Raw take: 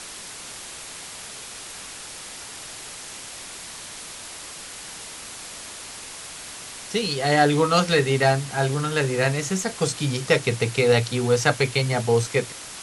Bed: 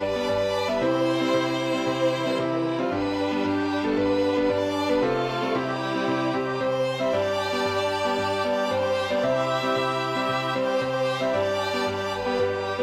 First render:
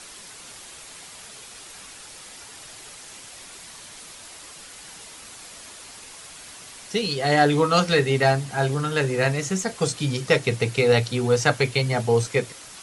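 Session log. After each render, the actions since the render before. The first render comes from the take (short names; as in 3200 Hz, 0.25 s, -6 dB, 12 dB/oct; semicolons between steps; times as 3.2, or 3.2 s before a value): denoiser 6 dB, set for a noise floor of -38 dBFS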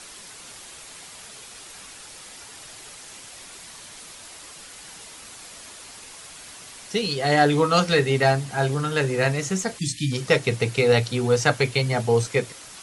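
9.78–10.12 spectral delete 360–1700 Hz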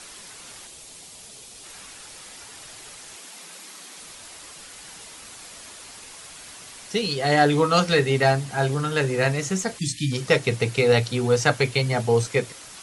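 0.67–1.64 bell 1500 Hz -9 dB 1.6 oct; 3.16–3.99 frequency shift +150 Hz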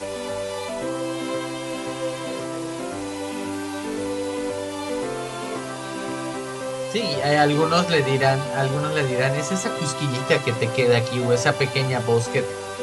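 add bed -4.5 dB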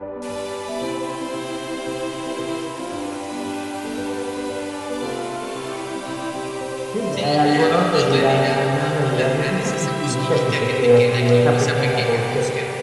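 bands offset in time lows, highs 0.22 s, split 1500 Hz; spring tank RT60 3.3 s, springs 33/37 ms, chirp 55 ms, DRR -0.5 dB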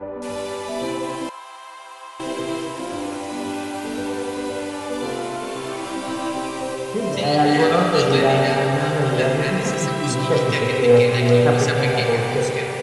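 1.29–2.2 ladder high-pass 850 Hz, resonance 60%; 5.81–6.75 doubler 19 ms -4 dB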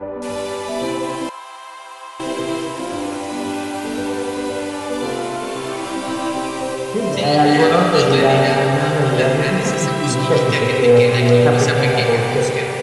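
gain +3.5 dB; limiter -2 dBFS, peak gain reduction 3 dB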